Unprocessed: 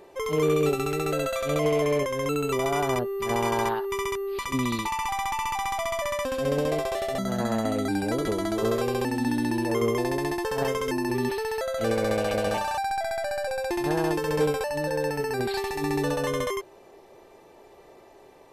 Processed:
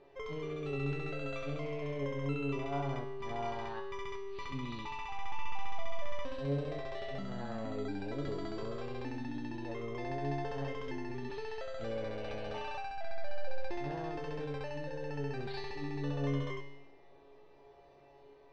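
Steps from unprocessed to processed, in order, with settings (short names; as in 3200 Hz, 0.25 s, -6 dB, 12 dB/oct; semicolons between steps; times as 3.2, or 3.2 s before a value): LPF 4800 Hz 24 dB/oct; low shelf 81 Hz +11.5 dB; limiter -20 dBFS, peak gain reduction 7 dB; resonator 140 Hz, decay 0.95 s, harmonics all, mix 90%; on a send: reverb RT60 1.0 s, pre-delay 31 ms, DRR 19.5 dB; on the sum: gain +4.5 dB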